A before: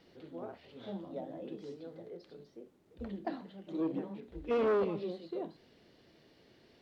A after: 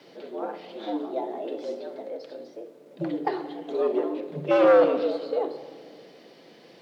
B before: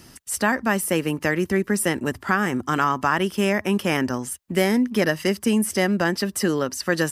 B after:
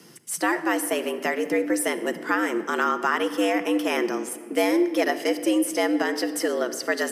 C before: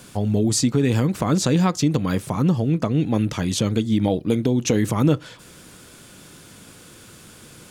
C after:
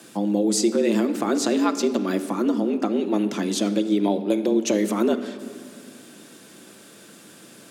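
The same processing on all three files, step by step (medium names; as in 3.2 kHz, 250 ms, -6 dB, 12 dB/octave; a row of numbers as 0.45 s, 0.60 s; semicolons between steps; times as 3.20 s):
frequency shift +99 Hz; simulated room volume 3800 m³, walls mixed, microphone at 0.78 m; peak normalisation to -9 dBFS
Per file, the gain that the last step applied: +11.0 dB, -3.0 dB, -2.5 dB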